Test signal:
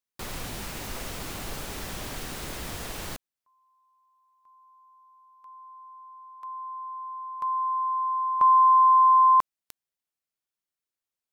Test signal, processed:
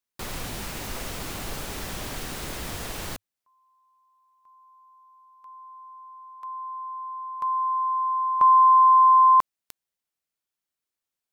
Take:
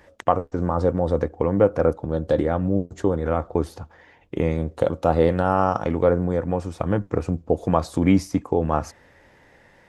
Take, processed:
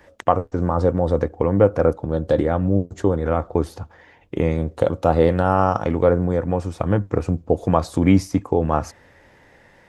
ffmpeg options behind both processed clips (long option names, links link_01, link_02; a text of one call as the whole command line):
ffmpeg -i in.wav -af "adynamicequalizer=threshold=0.00562:dfrequency=100:dqfactor=5.3:tfrequency=100:tqfactor=5.3:attack=5:release=100:ratio=0.375:range=2.5:mode=boostabove:tftype=bell,volume=2dB" out.wav